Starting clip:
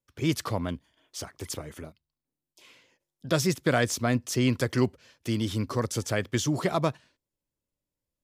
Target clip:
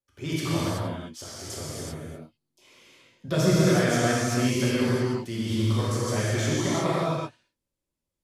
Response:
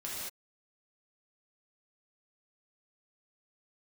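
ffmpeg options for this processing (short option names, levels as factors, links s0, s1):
-filter_complex "[0:a]asettb=1/sr,asplit=3[s0][s1][s2];[s0]atrim=end=1.624[s3];[s1]atrim=start=1.62:end=3.56,asetpts=PTS-STARTPTS,afade=t=in:d=0.004:c=qsin,afade=t=out:st=1.936:d=0.004:c=qsin,lowshelf=f=450:g=7[s4];[s2]atrim=start=3.556[s5];[s3][s4]acrossfade=d=0.004:c1=hsin:c2=qsin[s6];[s6][s5]acrossfade=d=0.004:c1=qsin:c2=hsin[s7];[1:a]atrim=start_sample=2205,asetrate=26460,aresample=44100[s8];[s7][s8]afir=irnorm=-1:irlink=0,volume=0.631"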